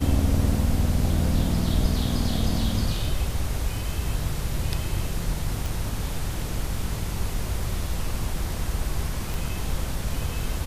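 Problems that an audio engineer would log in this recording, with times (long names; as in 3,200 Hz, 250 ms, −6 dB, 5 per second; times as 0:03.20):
0:05.66: click
0:09.34: click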